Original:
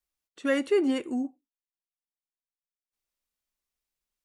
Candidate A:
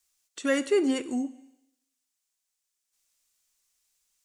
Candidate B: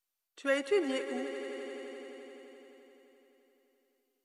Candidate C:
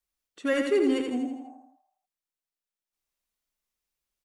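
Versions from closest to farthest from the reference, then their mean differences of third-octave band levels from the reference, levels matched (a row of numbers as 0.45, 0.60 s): A, C, B; 3.0, 4.5, 7.0 dB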